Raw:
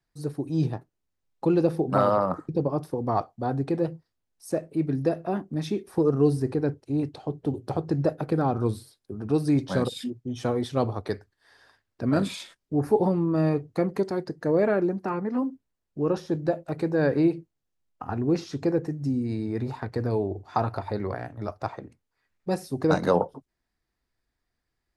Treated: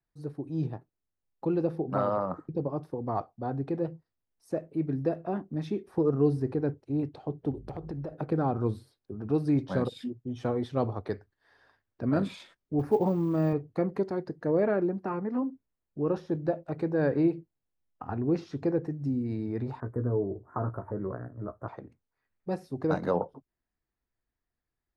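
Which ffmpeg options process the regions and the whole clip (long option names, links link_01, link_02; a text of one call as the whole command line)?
ffmpeg -i in.wav -filter_complex "[0:a]asettb=1/sr,asplit=3[link_01][link_02][link_03];[link_01]atrim=end=7.514[link_04];[link_02]atrim=start=7.51:end=8.13,asetpts=PTS-STARTPTS,afade=type=in:duration=0.004:curve=qsin,afade=type=out:start_time=0.616:duration=0.004:curve=qsin,aeval=exprs='val(0)+0.00631*(sin(2*PI*50*n/s)+sin(2*PI*2*50*n/s)/2+sin(2*PI*3*50*n/s)/3+sin(2*PI*4*50*n/s)/4+sin(2*PI*5*50*n/s)/5)':channel_layout=same,acompressor=threshold=-29dB:ratio=8:attack=3.2:release=140:knee=1:detection=peak,asoftclip=type=hard:threshold=-26dB[link_05];[link_03]atrim=start=8.126[link_06];[link_04][link_05]acrossfade=duration=0.004:curve1=hsin:curve2=qsin[link_07];[link_07][link_06]acrossfade=duration=0.004:curve1=qsin:curve2=hsin,asettb=1/sr,asplit=3[link_08][link_09][link_10];[link_08]atrim=end=12.794[link_11];[link_09]atrim=start=12.79:end=13.53,asetpts=PTS-STARTPTS,afade=type=in:duration=0.004:curve=qsin,afade=type=out:start_time=0.736:duration=0.004:curve=qsin,highpass=frequency=44:width=0.5412,highpass=frequency=44:width=1.3066,acrusher=bits=7:mode=log:mix=0:aa=0.000001[link_12];[link_10]atrim=start=13.526[link_13];[link_11][link_12]acrossfade=duration=0.004:curve1=hsin:curve2=qsin[link_14];[link_14][link_13]acrossfade=duration=0.004:curve1=qsin:curve2=hsin,asettb=1/sr,asplit=3[link_15][link_16][link_17];[link_15]atrim=end=19.804[link_18];[link_16]atrim=start=19.8:end=21.68,asetpts=PTS-STARTPTS,afade=type=in:duration=0.004:curve=qsin,afade=type=out:start_time=1.876:duration=0.004:curve=qsin,asuperstop=centerf=3700:order=8:qfactor=0.54,equalizer=frequency=790:width=3.5:gain=-12.5,asplit=2[link_19][link_20];[link_20]adelay=16,volume=-7dB[link_21];[link_19][link_21]amix=inputs=2:normalize=0,atrim=end_sample=82908[link_22];[link_17]atrim=start=21.676[link_23];[link_18][link_22]acrossfade=duration=0.004:curve1=hsin:curve2=qsin[link_24];[link_24][link_23]acrossfade=duration=0.004:curve1=qsin:curve2=hsin,equalizer=frequency=10000:width_type=o:width=2.3:gain=-13.5,dynaudnorm=framelen=920:gausssize=9:maxgain=3dB,volume=-6dB" out.wav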